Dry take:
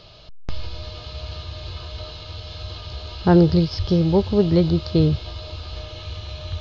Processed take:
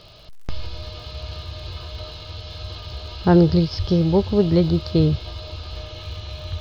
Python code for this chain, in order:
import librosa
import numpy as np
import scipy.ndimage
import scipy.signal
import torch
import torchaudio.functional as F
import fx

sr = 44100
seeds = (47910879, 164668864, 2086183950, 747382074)

y = fx.dmg_crackle(x, sr, seeds[0], per_s=140.0, level_db=-44.0)